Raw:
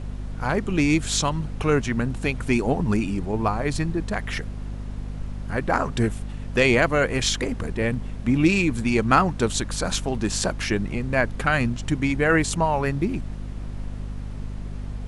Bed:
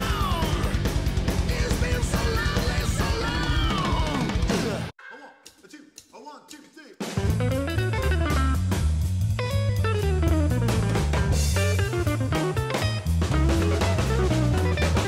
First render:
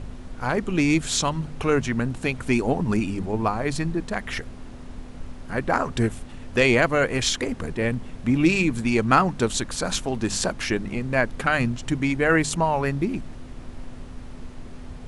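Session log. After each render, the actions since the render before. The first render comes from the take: de-hum 50 Hz, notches 4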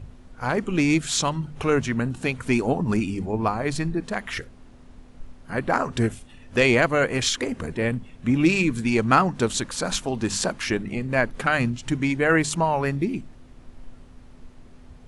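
noise print and reduce 9 dB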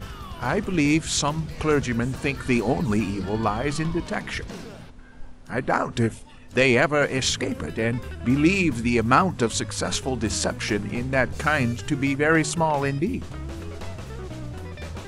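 add bed -13 dB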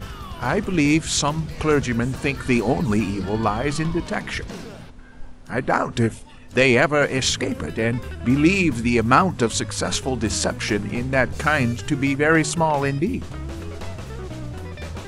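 trim +2.5 dB

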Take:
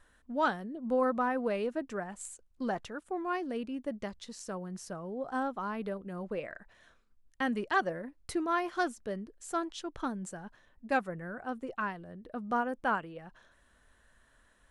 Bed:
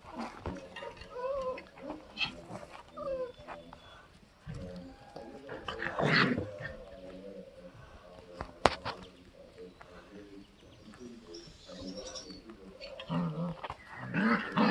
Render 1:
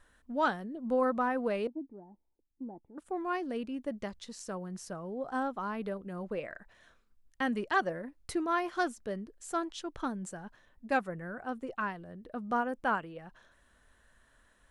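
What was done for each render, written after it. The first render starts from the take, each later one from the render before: 1.67–2.98 s: cascade formant filter u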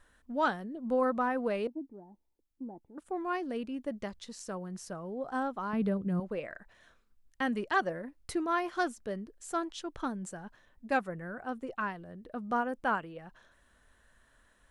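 5.73–6.20 s: peaking EQ 140 Hz +14 dB 1.8 oct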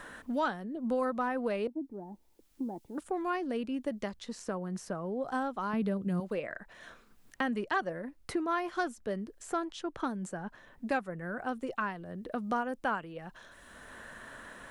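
three bands compressed up and down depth 70%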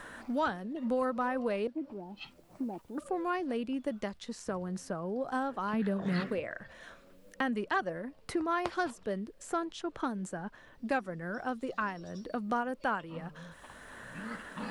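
add bed -13.5 dB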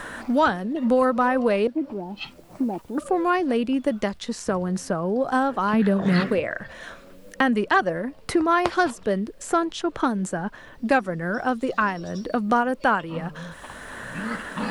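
trim +11.5 dB

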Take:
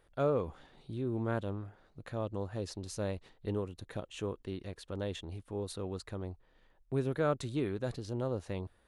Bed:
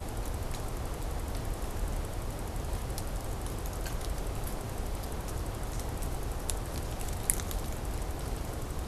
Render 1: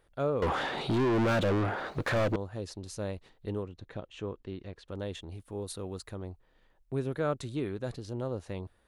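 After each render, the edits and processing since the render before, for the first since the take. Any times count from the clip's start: 0.42–2.36 s: overdrive pedal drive 40 dB, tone 2 kHz, clips at -19.5 dBFS; 3.63–4.88 s: distance through air 110 m; 5.38–6.12 s: treble shelf 9.2 kHz +11 dB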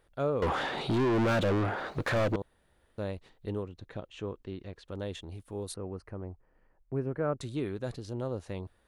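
2.42–2.98 s: room tone; 5.74–7.41 s: boxcar filter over 12 samples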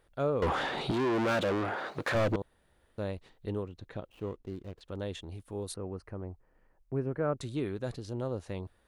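0.91–2.15 s: high-pass 260 Hz 6 dB/octave; 4.09–4.81 s: median filter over 25 samples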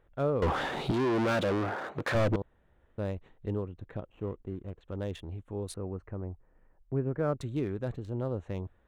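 local Wiener filter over 9 samples; bass shelf 200 Hz +4.5 dB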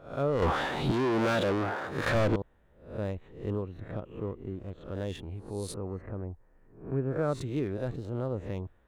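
reverse spectral sustain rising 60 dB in 0.47 s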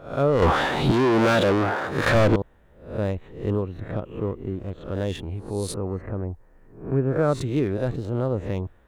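trim +8 dB

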